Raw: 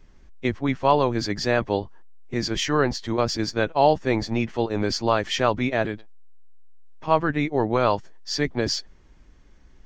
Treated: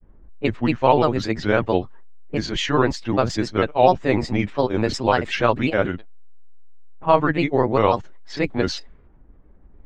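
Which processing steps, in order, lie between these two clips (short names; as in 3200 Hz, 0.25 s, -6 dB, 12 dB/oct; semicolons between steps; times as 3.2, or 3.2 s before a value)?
low-pass opened by the level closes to 820 Hz, open at -19 dBFS; bell 5300 Hz -10.5 dB 0.36 oct; grains, spray 14 ms, pitch spread up and down by 3 st; gain +4.5 dB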